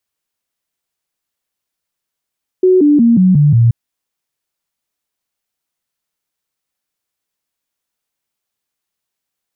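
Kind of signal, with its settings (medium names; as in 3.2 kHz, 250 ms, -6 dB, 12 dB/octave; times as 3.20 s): stepped sine 370 Hz down, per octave 3, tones 6, 0.18 s, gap 0.00 s -5.5 dBFS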